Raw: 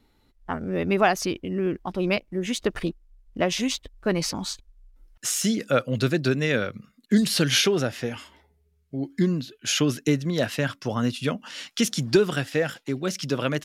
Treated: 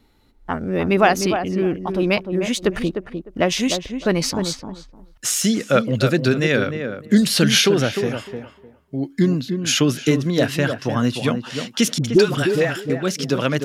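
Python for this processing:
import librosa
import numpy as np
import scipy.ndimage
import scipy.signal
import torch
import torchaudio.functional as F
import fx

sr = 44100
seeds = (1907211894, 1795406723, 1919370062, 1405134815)

y = fx.dispersion(x, sr, late='highs', ms=64.0, hz=680.0, at=(11.98, 12.9))
y = fx.echo_tape(y, sr, ms=303, feedback_pct=21, wet_db=-5.5, lp_hz=1100.0, drive_db=2.0, wow_cents=7)
y = F.gain(torch.from_numpy(y), 5.0).numpy()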